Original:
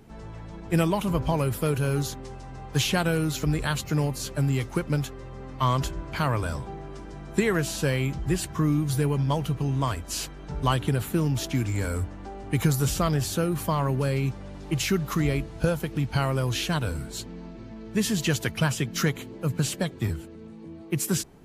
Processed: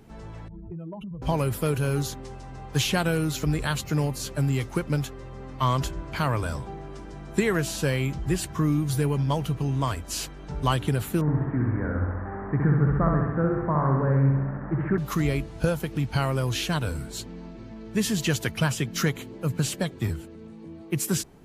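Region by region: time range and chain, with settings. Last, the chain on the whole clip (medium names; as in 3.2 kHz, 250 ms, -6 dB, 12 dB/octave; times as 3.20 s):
0.48–1.22 s: spectral contrast enhancement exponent 2.3 + hum notches 60/120/180/240/300/360/420/480/540 Hz + compression 16:1, threshold -33 dBFS
11.21–14.98 s: one-bit delta coder 64 kbps, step -31 dBFS + Chebyshev low-pass 1.8 kHz, order 5 + flutter echo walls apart 11.3 m, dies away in 1.1 s
whole clip: none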